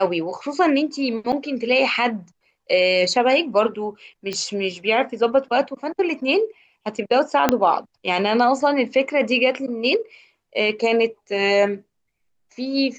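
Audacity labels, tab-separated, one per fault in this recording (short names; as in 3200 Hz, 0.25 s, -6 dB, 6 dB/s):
1.320000	1.330000	gap 7.1 ms
4.330000	4.330000	pop -14 dBFS
7.490000	7.490000	pop -1 dBFS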